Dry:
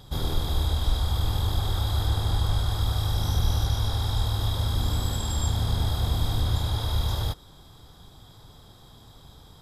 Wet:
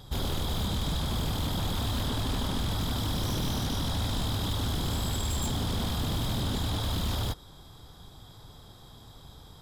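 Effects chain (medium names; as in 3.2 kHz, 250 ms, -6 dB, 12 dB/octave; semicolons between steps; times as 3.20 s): wavefolder -24.5 dBFS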